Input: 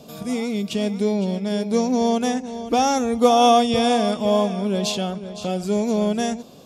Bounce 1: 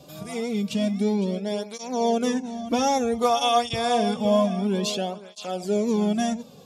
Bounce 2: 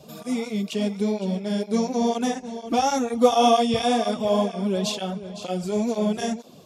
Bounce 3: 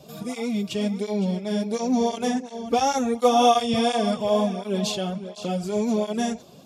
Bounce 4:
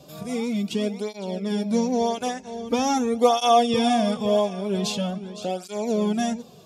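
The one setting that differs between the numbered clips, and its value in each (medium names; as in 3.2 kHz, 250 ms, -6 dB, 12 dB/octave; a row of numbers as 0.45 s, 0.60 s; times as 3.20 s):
cancelling through-zero flanger, nulls at: 0.28 Hz, 2.1 Hz, 1.4 Hz, 0.44 Hz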